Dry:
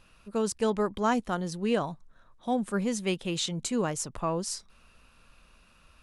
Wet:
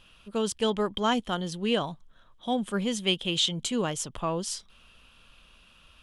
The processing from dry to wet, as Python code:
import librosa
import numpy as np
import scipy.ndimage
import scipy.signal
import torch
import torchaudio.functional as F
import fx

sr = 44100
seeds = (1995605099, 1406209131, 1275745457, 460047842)

y = fx.peak_eq(x, sr, hz=3200.0, db=15.0, octaves=0.35)